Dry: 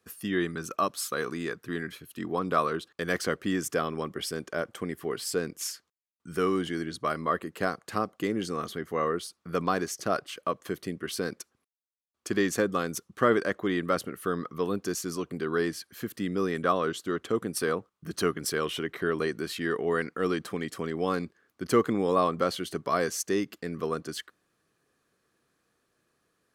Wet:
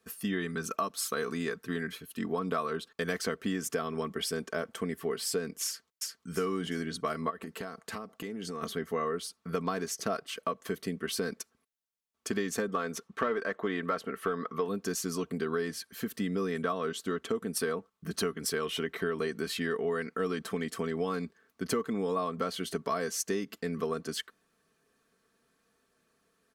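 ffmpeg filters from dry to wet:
-filter_complex "[0:a]asplit=2[s0][s1];[s1]afade=t=in:st=5.66:d=0.01,afade=t=out:st=6.3:d=0.01,aecho=0:1:350|700|1050|1400|1750:0.891251|0.311938|0.109178|0.0382124|0.0133743[s2];[s0][s2]amix=inputs=2:normalize=0,asplit=3[s3][s4][s5];[s3]afade=t=out:st=7.29:d=0.02[s6];[s4]acompressor=threshold=0.0178:ratio=10:attack=3.2:release=140:knee=1:detection=peak,afade=t=in:st=7.29:d=0.02,afade=t=out:st=8.61:d=0.02[s7];[s5]afade=t=in:st=8.61:d=0.02[s8];[s6][s7][s8]amix=inputs=3:normalize=0,asettb=1/sr,asplit=3[s9][s10][s11];[s9]atrim=end=12.684[s12];[s10]atrim=start=12.68:end=14.68,asetpts=PTS-STARTPTS,afade=t=in:d=0.004:c=qsin,afade=t=out:st=1.996:d=0.004:c=qsin,asplit=2[s13][s14];[s14]highpass=f=720:p=1,volume=4.47,asoftclip=type=tanh:threshold=0.376[s15];[s13][s15]amix=inputs=2:normalize=0,lowpass=f=1600:p=1,volume=0.501[s16];[s11]atrim=start=14.676[s17];[s12][s16]acrossfade=d=0.004:c1=hsin:c2=qsin[s18];[s18][s17]acrossfade=d=0.004:c1=qsin:c2=hsin,aecho=1:1:4.5:0.56,acompressor=threshold=0.0398:ratio=6"

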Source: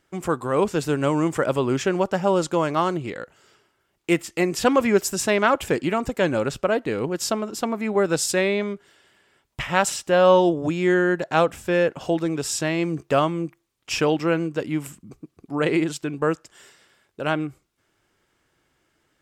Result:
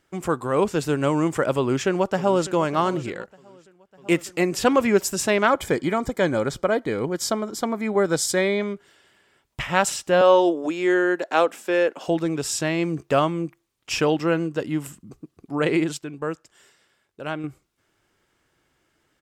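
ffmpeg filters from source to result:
-filter_complex "[0:a]asplit=2[s0][s1];[s1]afade=t=in:st=1.57:d=0.01,afade=t=out:st=2.52:d=0.01,aecho=0:1:600|1200|1800|2400|3000|3600|4200:0.158489|0.103018|0.0669617|0.0435251|0.0282913|0.0183894|0.0119531[s2];[s0][s2]amix=inputs=2:normalize=0,asettb=1/sr,asplit=3[s3][s4][s5];[s3]atrim=end=5.474[s6];[s4]atrim=start=5.47:end=8.64,asetpts=PTS-STARTPTS,afade=t=in:d=0.004:c=qsin,afade=t=out:st=3.166:d=0.004:c=qsin,asuperstop=centerf=2700:order=12:qfactor=6.9[s7];[s5]atrim=start=8.636[s8];[s6][s7]acrossfade=d=0.004:c1=hsin:c2=qsin[s9];[s9][s8]acrossfade=d=0.004:c1=qsin:c2=hsin,asettb=1/sr,asplit=3[s10][s11][s12];[s10]atrim=end=10.214[s13];[s11]atrim=start=10.21:end=12.08,asetpts=PTS-STARTPTS,afade=t=in:d=0.004:c=qsin,afade=t=out:st=1.866:d=0.004:c=qsin,highpass=f=260:w=0.5412,highpass=f=260:w=1.3066[s14];[s12]atrim=start=12.076[s15];[s13][s14]acrossfade=d=0.004:c1=hsin:c2=qsin[s16];[s16][s15]acrossfade=d=0.004:c1=qsin:c2=hsin,asettb=1/sr,asplit=3[s17][s18][s19];[s17]atrim=end=14.024[s20];[s18]atrim=start=14.02:end=15.38,asetpts=PTS-STARTPTS,afade=t=in:d=0.004:c=qsin,afade=t=out:st=1.356:d=0.004:c=qsin,bandreject=f=2300:w=12[s21];[s19]atrim=start=15.376[s22];[s20][s21]acrossfade=d=0.004:c1=hsin:c2=qsin[s23];[s23][s22]acrossfade=d=0.004:c1=qsin:c2=hsin,asplit=5[s24][s25][s26][s27][s28];[s24]atrim=end=3.37,asetpts=PTS-STARTPTS,afade=t=out:st=3.18:d=0.19:silence=0.316228[s29];[s25]atrim=start=3.37:end=3.91,asetpts=PTS-STARTPTS,volume=0.316[s30];[s26]atrim=start=3.91:end=15.992,asetpts=PTS-STARTPTS,afade=t=in:d=0.19:silence=0.316228[s31];[s27]atrim=start=15.988:end=17.442,asetpts=PTS-STARTPTS,volume=0.501[s32];[s28]atrim=start=17.438[s33];[s29][s30][s31]concat=n=3:v=0:a=1[s34];[s34][s32]acrossfade=d=0.004:c1=hsin:c2=hsin[s35];[s35][s33]acrossfade=d=0.004:c1=hsin:c2=hsin"

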